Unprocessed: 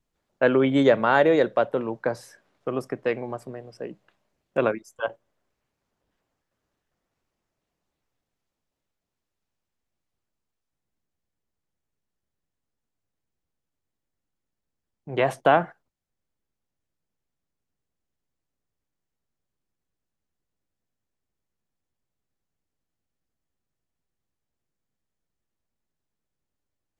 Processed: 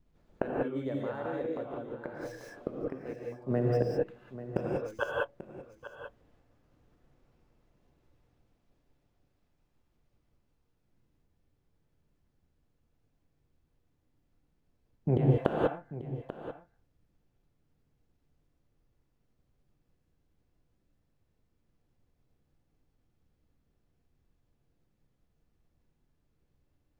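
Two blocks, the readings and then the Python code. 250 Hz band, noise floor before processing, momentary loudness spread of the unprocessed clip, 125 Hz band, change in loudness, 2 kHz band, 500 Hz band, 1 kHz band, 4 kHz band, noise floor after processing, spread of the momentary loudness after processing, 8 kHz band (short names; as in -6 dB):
-7.5 dB, -84 dBFS, 19 LU, +3.5 dB, -10.0 dB, -12.5 dB, -9.5 dB, -13.5 dB, -14.5 dB, -76 dBFS, 19 LU, n/a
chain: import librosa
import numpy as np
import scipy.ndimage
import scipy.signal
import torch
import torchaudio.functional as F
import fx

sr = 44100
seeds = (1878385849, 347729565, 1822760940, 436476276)

p1 = scipy.signal.medfilt(x, 5)
p2 = fx.low_shelf(p1, sr, hz=470.0, db=12.0)
p3 = fx.level_steps(p2, sr, step_db=10)
p4 = p2 + (p3 * 10.0 ** (-3.0 / 20.0))
p5 = fx.gate_flip(p4, sr, shuts_db=-14.0, range_db=-27)
p6 = p5 + 10.0 ** (-13.5 / 20.0) * np.pad(p5, (int(839 * sr / 1000.0), 0))[:len(p5)]
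p7 = fx.rev_gated(p6, sr, seeds[0], gate_ms=220, shape='rising', drr_db=-3.0)
y = p7 * 10.0 ** (-3.0 / 20.0)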